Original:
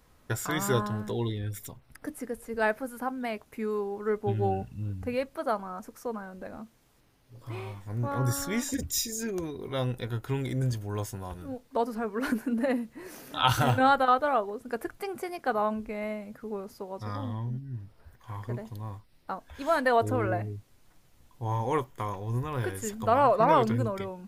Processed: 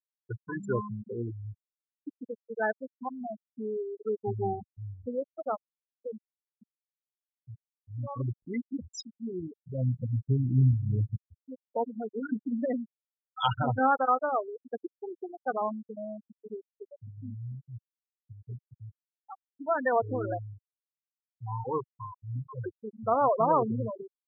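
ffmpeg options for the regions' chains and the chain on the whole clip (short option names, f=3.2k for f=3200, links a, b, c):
-filter_complex "[0:a]asettb=1/sr,asplit=3[a][b][c];[a]atrim=end=8.854[d];[b]atrim=start=8.85:end=11.16,asetpts=PTS-STARTPTS,afade=t=in:d=0.004:c=qsin,afade=t=out:st=2.306:d=0.004:c=qsin,asubboost=boost=7:cutoff=240,aecho=1:1:260:0.211,atrim=end_sample=101871[e];[c]atrim=start=11.156[f];[d][e]acrossfade=d=0.004:c1=hsin:c2=qsin[g];[g][f]acrossfade=d=0.004:c1=qsin:c2=hsin,afftfilt=real='re*gte(hypot(re,im),0.141)':imag='im*gte(hypot(re,im),0.141)':win_size=1024:overlap=0.75,highpass=110,volume=-2dB"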